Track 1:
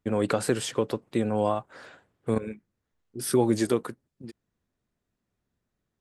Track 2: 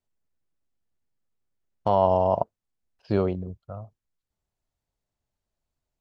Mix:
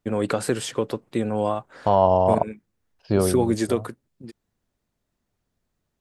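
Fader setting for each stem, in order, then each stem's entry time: +1.5, +3.0 dB; 0.00, 0.00 s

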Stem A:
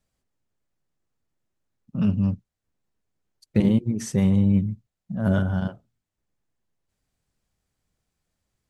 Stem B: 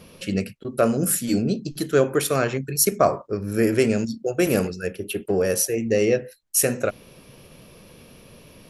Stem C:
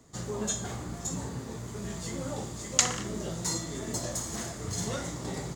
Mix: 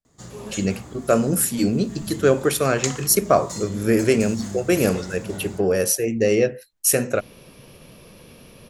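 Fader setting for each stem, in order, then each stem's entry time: -15.0, +1.5, -2.5 dB; 0.00, 0.30, 0.05 s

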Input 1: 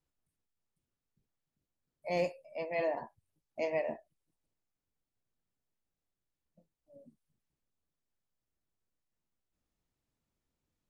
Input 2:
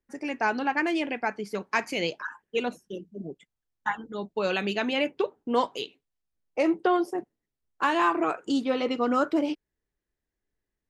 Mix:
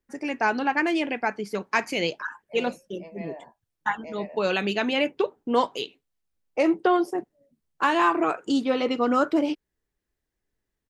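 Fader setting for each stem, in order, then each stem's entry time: -7.0, +2.5 dB; 0.45, 0.00 s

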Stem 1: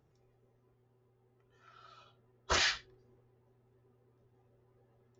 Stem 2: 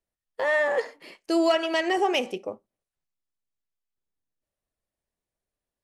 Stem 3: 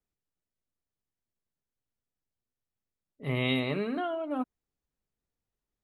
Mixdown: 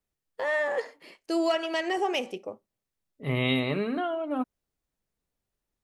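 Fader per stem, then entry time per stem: off, -4.0 dB, +2.5 dB; off, 0.00 s, 0.00 s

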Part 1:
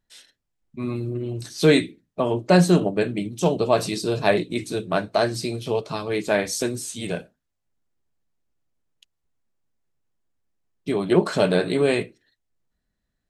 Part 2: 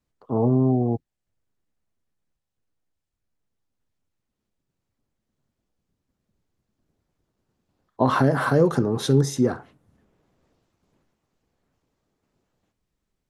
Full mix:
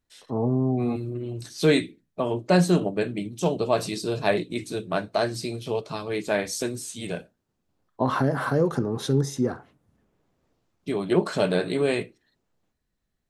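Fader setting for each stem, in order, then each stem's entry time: -3.5, -4.0 dB; 0.00, 0.00 s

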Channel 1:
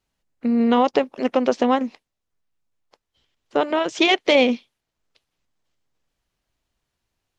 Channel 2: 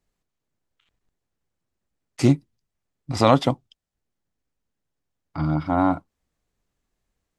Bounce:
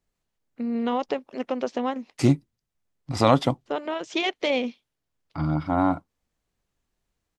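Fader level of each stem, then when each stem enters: -8.5, -2.0 dB; 0.15, 0.00 s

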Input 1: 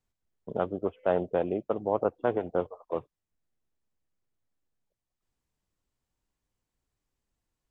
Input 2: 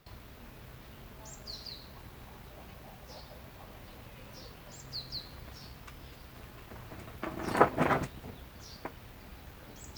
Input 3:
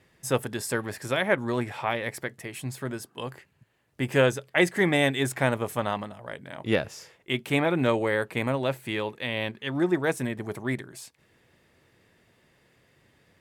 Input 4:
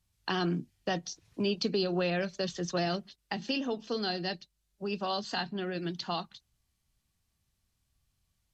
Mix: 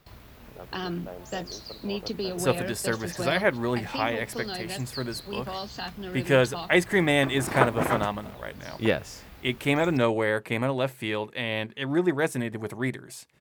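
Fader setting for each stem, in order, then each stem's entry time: -15.5, +1.5, +0.5, -2.0 dB; 0.00, 0.00, 2.15, 0.45 s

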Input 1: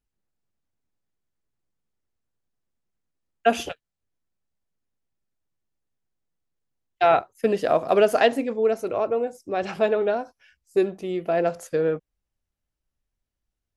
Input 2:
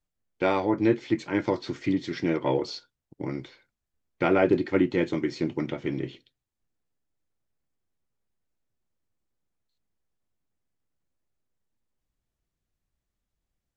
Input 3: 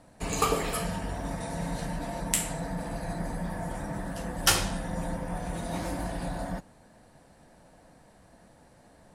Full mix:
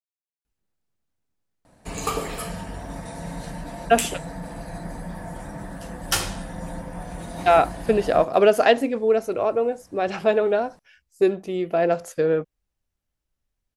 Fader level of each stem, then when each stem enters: +2.0 dB, off, -0.5 dB; 0.45 s, off, 1.65 s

